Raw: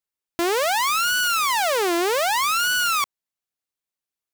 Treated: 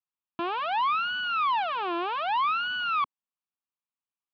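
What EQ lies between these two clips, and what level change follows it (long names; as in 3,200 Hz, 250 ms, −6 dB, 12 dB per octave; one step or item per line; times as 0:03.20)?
loudspeaker in its box 180–2,600 Hz, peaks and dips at 290 Hz −3 dB, 420 Hz −8 dB, 1,500 Hz −7 dB
phaser with its sweep stopped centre 2,000 Hz, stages 6
0.0 dB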